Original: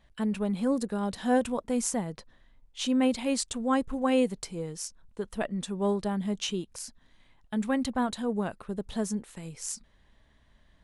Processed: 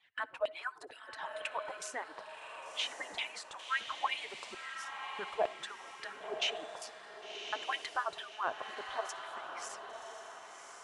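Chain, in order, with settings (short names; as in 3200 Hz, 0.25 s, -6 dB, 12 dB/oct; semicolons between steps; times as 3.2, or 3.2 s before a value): median-filter separation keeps percussive; limiter -26 dBFS, peak gain reduction 9.5 dB; LFO band-pass saw down 2.2 Hz 650–3000 Hz; diffused feedback echo 1.091 s, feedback 42%, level -6 dB; on a send at -22 dB: reverb RT60 0.40 s, pre-delay 52 ms; 3.59–4.54 on the sum: mismatched tape noise reduction encoder only; gain +10 dB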